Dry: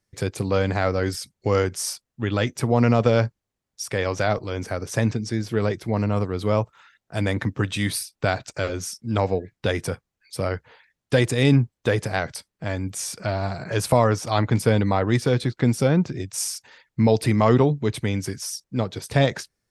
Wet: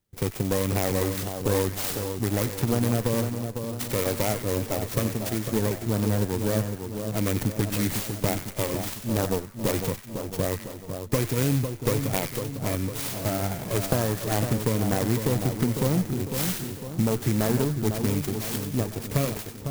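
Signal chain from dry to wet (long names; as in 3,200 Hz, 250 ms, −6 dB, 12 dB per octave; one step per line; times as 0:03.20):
lower of the sound and its delayed copy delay 0.36 ms
0:04.99–0:05.53: spectral tilt +1.5 dB per octave
downward compressor, threshold −20 dBFS, peak gain reduction 8.5 dB
echo with a time of its own for lows and highs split 1,400 Hz, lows 502 ms, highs 94 ms, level −7 dB
converter with an unsteady clock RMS 0.094 ms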